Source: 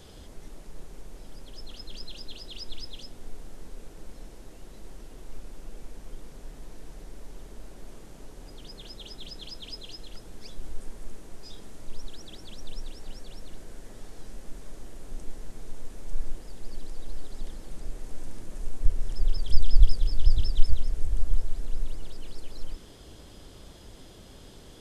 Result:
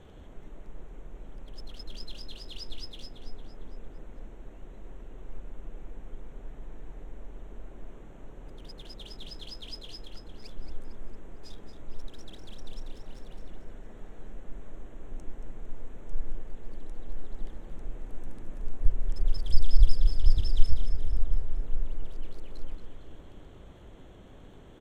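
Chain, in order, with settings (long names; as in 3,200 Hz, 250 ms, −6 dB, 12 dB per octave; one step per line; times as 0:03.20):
adaptive Wiener filter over 9 samples
repeating echo 227 ms, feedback 46%, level −9.5 dB
level −1.5 dB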